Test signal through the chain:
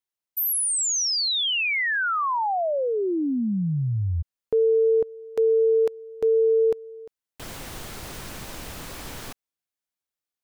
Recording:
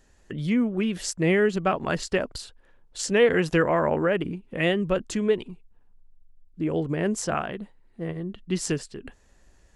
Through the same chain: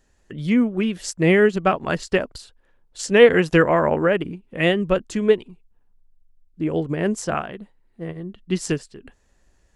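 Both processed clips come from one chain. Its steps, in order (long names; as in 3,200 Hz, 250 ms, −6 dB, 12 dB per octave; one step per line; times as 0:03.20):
expander for the loud parts 1.5 to 1, over −37 dBFS
level +8 dB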